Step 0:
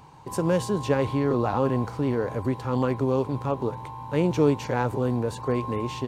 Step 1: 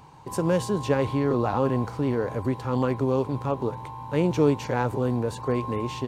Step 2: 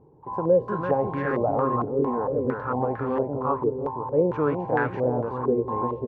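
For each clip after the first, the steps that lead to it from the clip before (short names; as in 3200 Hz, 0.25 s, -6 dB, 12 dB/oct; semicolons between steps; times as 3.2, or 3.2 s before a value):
nothing audible
low shelf 350 Hz -3 dB; feedback echo 0.338 s, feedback 41%, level -4.5 dB; stepped low-pass 4.4 Hz 420–1700 Hz; gain -3.5 dB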